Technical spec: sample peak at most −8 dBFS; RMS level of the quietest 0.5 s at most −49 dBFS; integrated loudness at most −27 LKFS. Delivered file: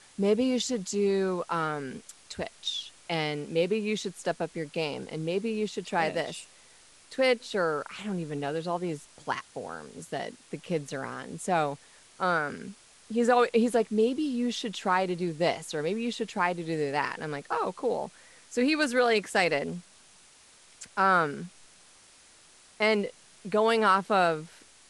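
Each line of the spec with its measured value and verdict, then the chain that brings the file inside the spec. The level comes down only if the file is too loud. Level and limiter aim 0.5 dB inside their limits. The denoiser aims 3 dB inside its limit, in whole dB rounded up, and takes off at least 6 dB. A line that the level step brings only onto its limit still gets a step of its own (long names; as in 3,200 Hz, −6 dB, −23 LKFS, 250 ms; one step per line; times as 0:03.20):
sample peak −9.5 dBFS: in spec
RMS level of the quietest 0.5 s −57 dBFS: in spec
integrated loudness −29.0 LKFS: in spec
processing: no processing needed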